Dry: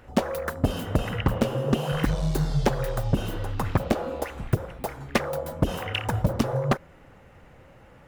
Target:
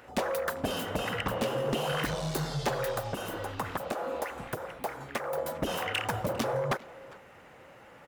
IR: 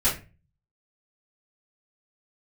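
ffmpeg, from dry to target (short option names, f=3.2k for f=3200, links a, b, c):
-filter_complex "[0:a]highpass=f=460:p=1,asettb=1/sr,asplit=3[a][b][c];[a]atrim=end=2.984[d];[b]atrim=start=2.98:end=5.38,asetpts=PTS-STARTPTS,afade=t=in:d=0.004:c=qsin,afade=t=out:st=2.396:d=0.004:c=qsin,acrossover=split=590|2100|5900[e][f][g][h];[e]acompressor=threshold=-37dB:ratio=4[i];[f]acompressor=threshold=-32dB:ratio=4[j];[g]acompressor=threshold=-54dB:ratio=4[k];[h]acompressor=threshold=-45dB:ratio=4[l];[i][j][k][l]amix=inputs=4:normalize=0[m];[c]atrim=start=5.376[n];[d][m]acrossfade=d=0.004:c1=hsin:c2=qsin[o];[o][n]acrossfade=d=0.004:c1=qsin:c2=hsin,asoftclip=type=tanh:threshold=-26dB,asplit=2[p][q];[q]adelay=400,highpass=300,lowpass=3.4k,asoftclip=type=hard:threshold=-35dB,volume=-15dB[r];[p][r]amix=inputs=2:normalize=0,volume=3dB" -ar 48000 -c:a aac -b:a 192k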